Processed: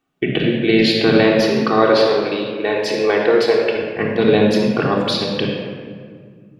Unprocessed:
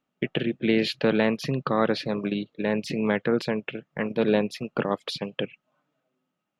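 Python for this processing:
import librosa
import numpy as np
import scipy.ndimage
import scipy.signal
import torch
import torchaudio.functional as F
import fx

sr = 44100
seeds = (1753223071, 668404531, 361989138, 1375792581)

y = fx.low_shelf_res(x, sr, hz=280.0, db=-13.5, q=1.5, at=(1.38, 3.76))
y = fx.room_shoebox(y, sr, seeds[0], volume_m3=3200.0, walls='mixed', distance_m=3.5)
y = fx.dynamic_eq(y, sr, hz=4600.0, q=1.7, threshold_db=-45.0, ratio=4.0, max_db=5)
y = y * 10.0 ** (4.5 / 20.0)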